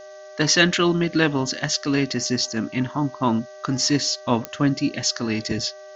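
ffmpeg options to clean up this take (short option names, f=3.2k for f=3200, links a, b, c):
-af "adeclick=t=4,bandreject=f=387.1:t=h:w=4,bandreject=f=774.2:t=h:w=4,bandreject=f=1.1613k:t=h:w=4,bandreject=f=1.5484k:t=h:w=4,bandreject=f=1.9355k:t=h:w=4,bandreject=f=610:w=30,afftdn=nr=26:nf=-41"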